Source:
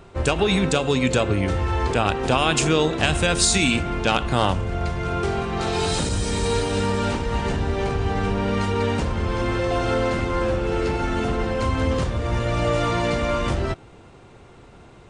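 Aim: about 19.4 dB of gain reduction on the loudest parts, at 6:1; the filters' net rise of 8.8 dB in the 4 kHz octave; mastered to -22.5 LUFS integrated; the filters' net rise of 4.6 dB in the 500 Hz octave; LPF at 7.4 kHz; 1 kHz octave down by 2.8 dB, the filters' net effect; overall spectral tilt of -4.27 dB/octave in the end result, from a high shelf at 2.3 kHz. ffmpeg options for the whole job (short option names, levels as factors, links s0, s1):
-af "lowpass=7400,equalizer=f=500:t=o:g=7,equalizer=f=1000:t=o:g=-8.5,highshelf=f=2300:g=7,equalizer=f=4000:t=o:g=5.5,acompressor=threshold=0.0224:ratio=6,volume=4.22"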